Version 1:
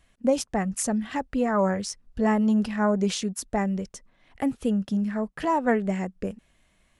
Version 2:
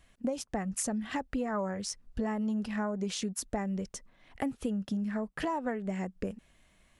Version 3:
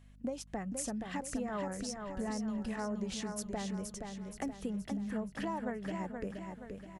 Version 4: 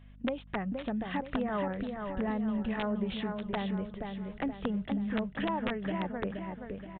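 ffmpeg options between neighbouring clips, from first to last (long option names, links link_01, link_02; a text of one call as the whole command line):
ffmpeg -i in.wav -af "acompressor=threshold=-30dB:ratio=6" out.wav
ffmpeg -i in.wav -filter_complex "[0:a]aeval=exprs='val(0)+0.00282*(sin(2*PI*50*n/s)+sin(2*PI*2*50*n/s)/2+sin(2*PI*3*50*n/s)/3+sin(2*PI*4*50*n/s)/4+sin(2*PI*5*50*n/s)/5)':channel_layout=same,asplit=2[link_01][link_02];[link_02]aecho=0:1:474|948|1422|1896|2370|2844:0.531|0.25|0.117|0.0551|0.0259|0.0122[link_03];[link_01][link_03]amix=inputs=2:normalize=0,volume=-5.5dB" out.wav
ffmpeg -i in.wav -af "aeval=exprs='(mod(22.4*val(0)+1,2)-1)/22.4':channel_layout=same,aresample=8000,aresample=44100,volume=5dB" out.wav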